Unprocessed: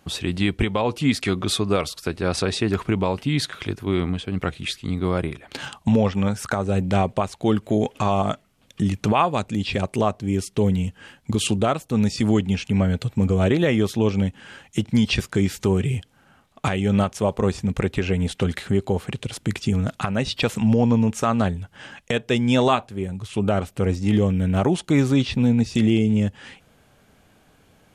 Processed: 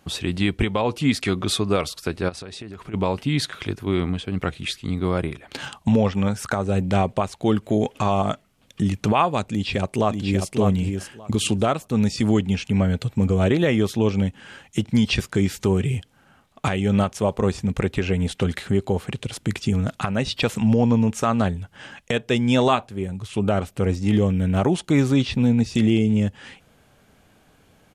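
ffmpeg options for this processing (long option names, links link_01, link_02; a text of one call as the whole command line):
ffmpeg -i in.wav -filter_complex "[0:a]asplit=3[link_01][link_02][link_03];[link_01]afade=type=out:start_time=2.28:duration=0.02[link_04];[link_02]acompressor=threshold=-33dB:ratio=8:attack=3.2:release=140:knee=1:detection=peak,afade=type=in:start_time=2.28:duration=0.02,afade=type=out:start_time=2.93:duration=0.02[link_05];[link_03]afade=type=in:start_time=2.93:duration=0.02[link_06];[link_04][link_05][link_06]amix=inputs=3:normalize=0,asplit=2[link_07][link_08];[link_08]afade=type=in:start_time=9.5:duration=0.01,afade=type=out:start_time=10.49:duration=0.01,aecho=0:1:590|1180|1770:0.562341|0.0843512|0.0126527[link_09];[link_07][link_09]amix=inputs=2:normalize=0" out.wav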